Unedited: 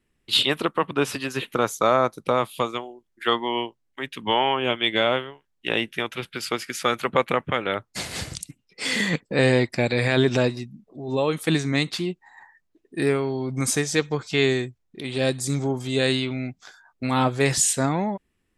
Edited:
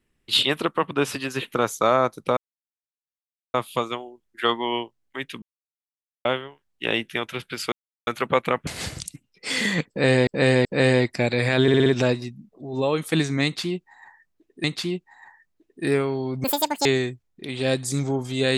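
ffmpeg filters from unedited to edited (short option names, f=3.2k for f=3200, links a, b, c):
-filter_complex "[0:a]asplit=16[a][b][c][d][e][f][g][h][i][j][k][l][m][n][o][p];[a]atrim=end=2.37,asetpts=PTS-STARTPTS,afade=t=out:st=2.366:d=0.004:c=hsin,apad=pad_dur=1.17[q];[b]atrim=start=2.37:end=4.25,asetpts=PTS-STARTPTS,afade=t=in:d=0.004:c=hsin,afade=t=out:st=1.876:d=0.004:c=hsin[r];[c]atrim=start=4.25:end=5.08,asetpts=PTS-STARTPTS,volume=0[s];[d]atrim=start=5.08:end=6.55,asetpts=PTS-STARTPTS,afade=t=in:d=0.004:c=hsin,afade=t=out:st=1.466:d=0.004:c=hsin[t];[e]atrim=start=6.55:end=6.9,asetpts=PTS-STARTPTS,volume=0[u];[f]atrim=start=6.9:end=7.502,asetpts=PTS-STARTPTS,afade=t=in:d=0.004:c=hsin[v];[g]atrim=start=8.018:end=9.622[w];[h]atrim=start=9.238:end=9.622[x];[i]atrim=start=9.238:end=10.272[y];[j]atrim=start=10.208:end=10.272[z];[k]atrim=start=10.208:end=10.272[aa];[l]atrim=start=10.208:end=10.272[ab];[m]atrim=start=10.208:end=12.992[ac];[n]atrim=start=11.788:end=13.594[ad];[o]atrim=start=13.59:end=14.41,asetpts=PTS-STARTPTS,asetrate=87318,aresample=44100[ae];[p]atrim=start=14.406[af];[q][r][s][t][u][v]concat=n=6:v=0:a=1[ag];[ag][w]acrossfade=d=0.004:c1=hsin:c2=hsin[ah];[ah][x]acrossfade=d=0.004:c1=hsin:c2=hsin[ai];[ai][y]acrossfade=d=0.004:c1=hsin:c2=hsin[aj];[aj][z]acrossfade=d=0.004:c1=hsin:c2=hsin[ak];[ak][aa]acrossfade=d=0.004:c1=hsin:c2=hsin[al];[al][ab]acrossfade=d=0.004:c1=hsin:c2=hsin[am];[am][ac]acrossfade=d=0.004:c1=hsin:c2=hsin[an];[an][ad]acrossfade=d=0.004:c1=hsin:c2=hsin[ao];[ao][ae]acrossfade=d=0.004:c1=hsin:c2=hsin[ap];[ap][af]acrossfade=d=0.004:c1=hsin:c2=hsin"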